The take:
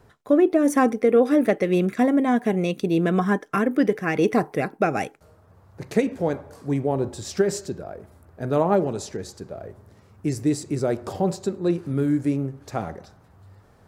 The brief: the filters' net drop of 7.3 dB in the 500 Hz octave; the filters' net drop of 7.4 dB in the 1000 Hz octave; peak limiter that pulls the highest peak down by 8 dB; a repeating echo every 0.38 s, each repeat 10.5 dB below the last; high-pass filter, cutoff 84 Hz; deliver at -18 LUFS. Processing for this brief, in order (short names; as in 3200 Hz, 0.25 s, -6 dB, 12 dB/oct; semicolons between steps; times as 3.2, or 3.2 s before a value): HPF 84 Hz; bell 500 Hz -8 dB; bell 1000 Hz -7 dB; limiter -19.5 dBFS; feedback echo 0.38 s, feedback 30%, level -10.5 dB; gain +12 dB